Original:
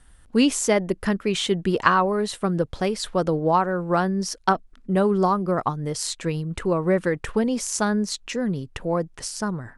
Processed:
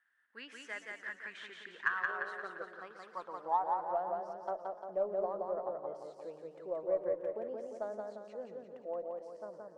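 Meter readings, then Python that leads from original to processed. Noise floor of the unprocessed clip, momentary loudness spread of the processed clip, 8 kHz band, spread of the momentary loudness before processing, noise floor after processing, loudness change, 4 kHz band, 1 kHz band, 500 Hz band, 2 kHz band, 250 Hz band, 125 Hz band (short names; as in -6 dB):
-52 dBFS, 13 LU, under -35 dB, 8 LU, -58 dBFS, -15.5 dB, under -20 dB, -13.0 dB, -13.5 dB, -10.0 dB, -29.5 dB, under -35 dB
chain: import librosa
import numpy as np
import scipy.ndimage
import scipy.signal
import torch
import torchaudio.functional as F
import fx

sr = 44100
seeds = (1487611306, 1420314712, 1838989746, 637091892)

p1 = fx.filter_sweep_bandpass(x, sr, from_hz=1700.0, to_hz=600.0, start_s=2.28, end_s=4.18, q=6.0)
p2 = scipy.signal.sosfilt(scipy.signal.butter(2, 210.0, 'highpass', fs=sr, output='sos'), p1)
p3 = p2 + fx.echo_feedback(p2, sr, ms=174, feedback_pct=50, wet_db=-3, dry=0)
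p4 = fx.spec_box(p3, sr, start_s=2.08, length_s=0.69, low_hz=340.0, high_hz=770.0, gain_db=9)
p5 = fx.cheby_harmonics(p4, sr, harmonics=(6,), levels_db=(-39,), full_scale_db=-10.5)
p6 = fx.echo_warbled(p5, sr, ms=116, feedback_pct=72, rate_hz=2.8, cents=172, wet_db=-16.5)
y = p6 * librosa.db_to_amplitude(-7.0)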